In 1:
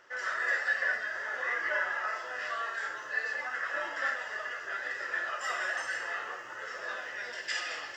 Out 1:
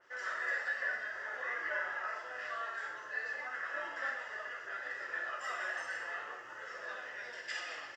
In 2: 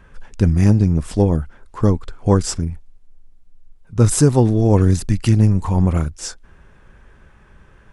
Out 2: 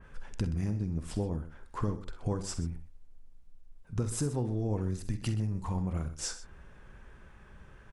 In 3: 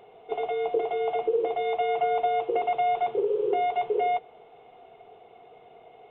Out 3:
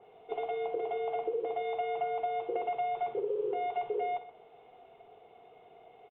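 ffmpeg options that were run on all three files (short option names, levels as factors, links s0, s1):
-filter_complex "[0:a]acompressor=threshold=0.0631:ratio=6,asplit=2[s0][s1];[s1]aecho=0:1:48|64|126:0.237|0.188|0.178[s2];[s0][s2]amix=inputs=2:normalize=0,adynamicequalizer=threshold=0.00501:dfrequency=2900:dqfactor=0.7:tfrequency=2900:tqfactor=0.7:attack=5:release=100:ratio=0.375:range=2:mode=cutabove:tftype=highshelf,volume=0.531"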